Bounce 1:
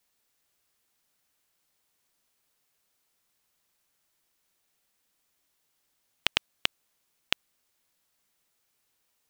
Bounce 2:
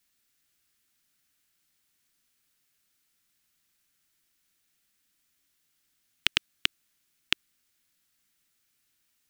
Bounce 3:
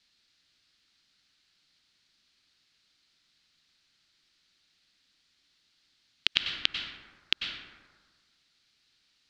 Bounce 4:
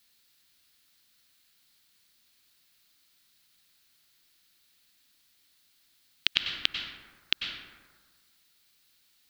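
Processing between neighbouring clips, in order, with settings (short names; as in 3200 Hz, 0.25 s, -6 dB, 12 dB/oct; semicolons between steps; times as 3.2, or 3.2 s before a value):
band shelf 670 Hz -9 dB; gain +1.5 dB
synth low-pass 4300 Hz, resonance Q 2.9; plate-style reverb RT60 1.5 s, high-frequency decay 0.4×, pre-delay 85 ms, DRR 11 dB; maximiser +4.5 dB; gain -1 dB
added noise blue -69 dBFS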